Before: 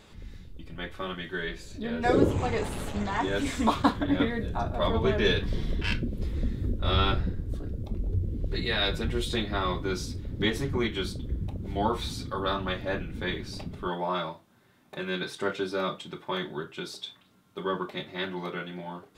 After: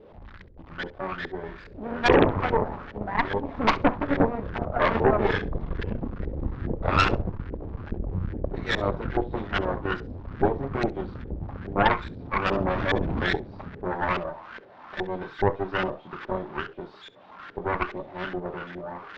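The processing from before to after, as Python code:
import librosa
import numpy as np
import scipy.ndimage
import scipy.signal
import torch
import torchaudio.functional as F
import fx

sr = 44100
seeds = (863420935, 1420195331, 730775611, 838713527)

y = x + 0.5 * 10.0 ** (-20.0 / 20.0) * np.diff(np.sign(x), prepend=np.sign(x[:1]))
y = fx.power_curve(y, sr, exponent=1.4, at=(2.76, 3.49))
y = fx.filter_lfo_lowpass(y, sr, shape='saw_up', hz=2.4, low_hz=400.0, high_hz=1800.0, q=3.3)
y = scipy.signal.sosfilt(scipy.signal.butter(4, 4600.0, 'lowpass', fs=sr, output='sos'), y)
y = fx.cheby_harmonics(y, sr, harmonics=(8,), levels_db=(-12,), full_scale_db=-4.0)
y = fx.room_flutter(y, sr, wall_m=11.4, rt60_s=0.21)
y = fx.env_flatten(y, sr, amount_pct=70, at=(12.51, 13.36))
y = y * librosa.db_to_amplitude(-2.5)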